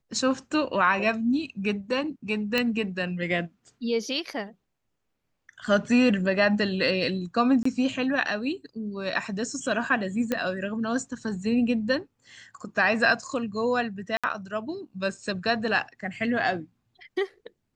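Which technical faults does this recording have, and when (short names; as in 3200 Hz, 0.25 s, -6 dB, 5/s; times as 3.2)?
2.58 pop -10 dBFS
7.63–7.65 gap 24 ms
10.32 pop -12 dBFS
14.17–14.24 gap 66 ms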